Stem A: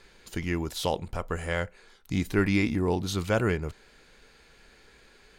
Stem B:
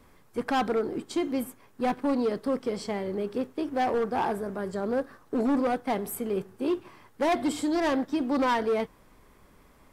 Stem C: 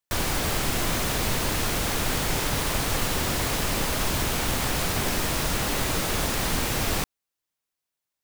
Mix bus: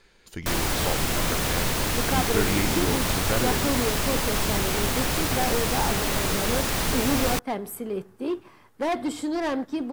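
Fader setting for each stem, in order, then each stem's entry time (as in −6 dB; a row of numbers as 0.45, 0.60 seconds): −3.0, −1.0, +0.5 decibels; 0.00, 1.60, 0.35 seconds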